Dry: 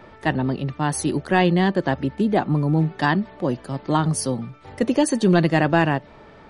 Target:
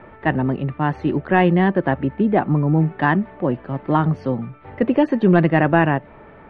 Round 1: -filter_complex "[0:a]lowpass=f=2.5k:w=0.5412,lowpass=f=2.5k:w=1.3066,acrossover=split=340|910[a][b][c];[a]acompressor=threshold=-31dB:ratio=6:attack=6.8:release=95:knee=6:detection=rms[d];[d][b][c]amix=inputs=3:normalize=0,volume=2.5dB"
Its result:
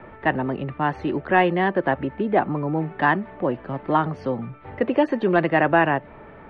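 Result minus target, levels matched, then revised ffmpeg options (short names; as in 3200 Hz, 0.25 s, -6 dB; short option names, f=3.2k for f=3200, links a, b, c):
compressor: peak gain reduction +15 dB
-af "lowpass=f=2.5k:w=0.5412,lowpass=f=2.5k:w=1.3066,volume=2.5dB"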